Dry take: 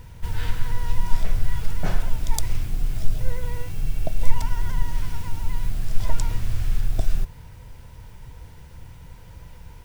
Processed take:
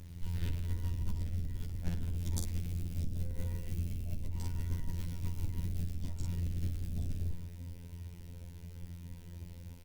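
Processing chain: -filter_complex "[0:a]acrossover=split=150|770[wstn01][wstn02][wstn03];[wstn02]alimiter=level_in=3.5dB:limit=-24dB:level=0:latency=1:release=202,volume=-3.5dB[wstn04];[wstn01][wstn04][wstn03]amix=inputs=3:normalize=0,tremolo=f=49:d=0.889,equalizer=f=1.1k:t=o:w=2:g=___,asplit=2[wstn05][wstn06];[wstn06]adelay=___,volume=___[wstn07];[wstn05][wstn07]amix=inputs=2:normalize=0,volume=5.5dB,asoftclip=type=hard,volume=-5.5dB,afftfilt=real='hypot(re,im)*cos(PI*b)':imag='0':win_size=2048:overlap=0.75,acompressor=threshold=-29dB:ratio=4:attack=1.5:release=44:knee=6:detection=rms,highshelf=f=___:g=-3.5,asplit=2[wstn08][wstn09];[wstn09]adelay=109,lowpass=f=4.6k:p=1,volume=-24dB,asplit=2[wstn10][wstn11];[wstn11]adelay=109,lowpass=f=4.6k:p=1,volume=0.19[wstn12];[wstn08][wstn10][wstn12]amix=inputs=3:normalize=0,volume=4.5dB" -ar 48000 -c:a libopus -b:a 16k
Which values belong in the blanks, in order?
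-14, 45, -3.5dB, 3.6k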